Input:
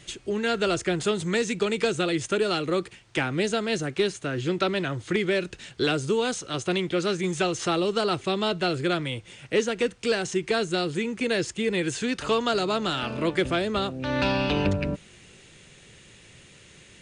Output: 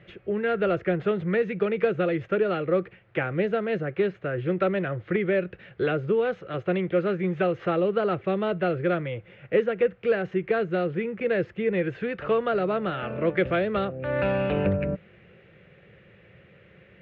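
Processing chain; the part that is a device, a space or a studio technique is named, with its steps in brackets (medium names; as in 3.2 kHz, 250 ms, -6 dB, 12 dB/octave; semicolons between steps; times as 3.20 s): bass cabinet (cabinet simulation 67–2200 Hz, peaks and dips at 190 Hz +4 dB, 260 Hz -10 dB, 530 Hz +7 dB, 950 Hz -8 dB); 13.37–13.85 s: treble shelf 3.3 kHz +11 dB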